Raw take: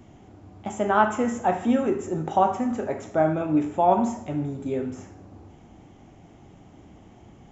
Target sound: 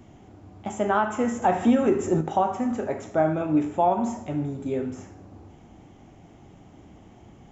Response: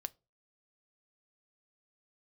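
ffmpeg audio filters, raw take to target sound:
-filter_complex "[0:a]asettb=1/sr,asplit=3[a][b][c];[a]atrim=end=1.424[d];[b]atrim=start=1.42:end=2.21,asetpts=PTS-STARTPTS,afade=t=in:d=0.004:c=qsin,afade=t=out:st=0.786:d=0.004:c=qsin,acontrast=48[e];[c]atrim=start=2.206[f];[d][e]acrossfade=d=0.004:c1=hsin:c2=qsin[g];[g][f]acrossfade=d=0.004:c1=qsin:c2=hsin,alimiter=limit=-11.5dB:level=0:latency=1:release=217"

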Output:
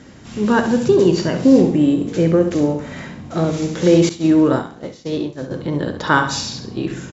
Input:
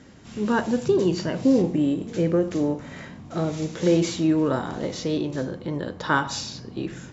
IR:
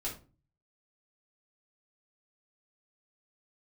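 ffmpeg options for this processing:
-filter_complex "[0:a]aecho=1:1:67|134|201|268:0.355|0.131|0.0486|0.018,asettb=1/sr,asplit=3[a][b][c];[a]atrim=end=4.094[d];[b]atrim=start=4.09:end=5.51,asetpts=PTS-STARTPTS,afade=t=in:d=0.004:c=qsin,afade=t=out:st=1.416:d=0.004:c=qsin,agate=range=-33dB:threshold=-19dB:ratio=3:detection=peak[e];[c]atrim=start=5.506[f];[d][e]acrossfade=d=0.004:c1=hsin:c2=qsin[g];[g][f]acrossfade=d=0.004:c1=qsin:c2=hsin,volume=6.5dB"

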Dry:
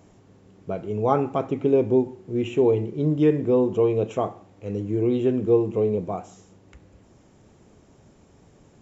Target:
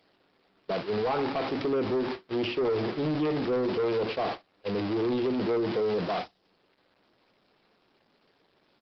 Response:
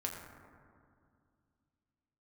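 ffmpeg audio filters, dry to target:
-filter_complex "[0:a]aeval=exprs='val(0)+0.5*0.0631*sgn(val(0))':c=same,agate=range=-42dB:threshold=-25dB:ratio=16:detection=peak,highpass=f=92:w=0.5412,highpass=f=92:w=1.3066,aemphasis=mode=production:type=bsi,asplit=2[a][b];[b]acompressor=threshold=-26dB:ratio=10,volume=1dB[c];[a][c]amix=inputs=2:normalize=0,alimiter=limit=-11.5dB:level=0:latency=1:release=388,aresample=11025,asoftclip=type=tanh:threshold=-25.5dB,aresample=44100,volume=3dB" -ar 48000 -c:a libopus -b:a 16k

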